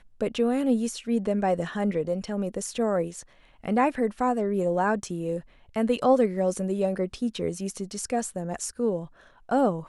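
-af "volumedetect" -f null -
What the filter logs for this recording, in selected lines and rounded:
mean_volume: -26.7 dB
max_volume: -9.1 dB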